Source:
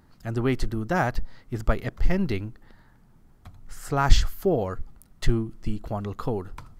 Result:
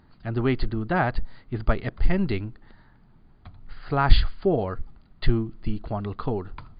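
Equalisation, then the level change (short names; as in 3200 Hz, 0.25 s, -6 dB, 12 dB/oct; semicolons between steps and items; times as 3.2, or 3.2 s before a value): brick-wall FIR low-pass 4900 Hz; notch 510 Hz, Q 12; +1.0 dB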